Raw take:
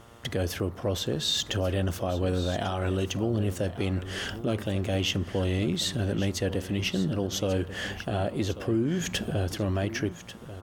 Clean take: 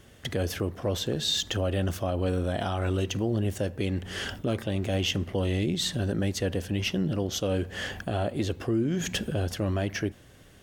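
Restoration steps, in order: de-hum 116.8 Hz, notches 12; inverse comb 1.141 s -13.5 dB

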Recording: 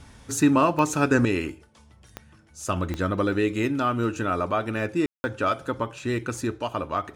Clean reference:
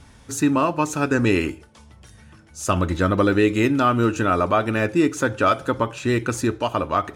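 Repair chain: de-click; room tone fill 5.06–5.24; gain correction +6 dB, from 1.25

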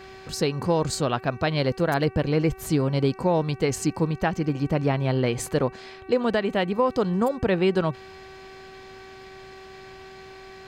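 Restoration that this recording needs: de-hum 381.7 Hz, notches 7

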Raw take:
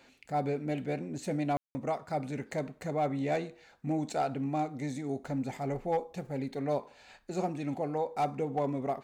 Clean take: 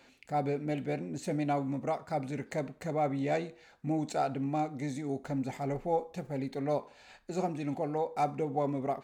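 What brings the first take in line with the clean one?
clip repair -22.5 dBFS; room tone fill 1.57–1.75

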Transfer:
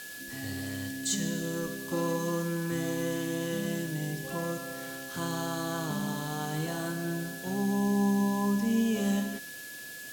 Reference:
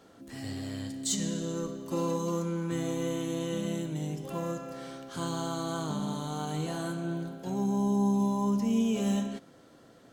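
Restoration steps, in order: notch 1700 Hz, Q 30; noise print and reduce 6 dB

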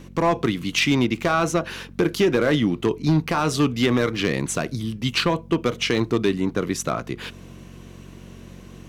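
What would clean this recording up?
clip repair -12 dBFS; de-hum 46 Hz, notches 5

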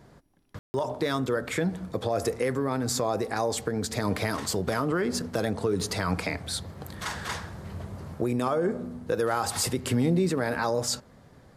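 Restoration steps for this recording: room tone fill 0.59–0.74

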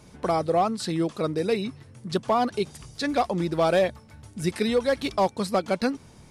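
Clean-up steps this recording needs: clip repair -14.5 dBFS

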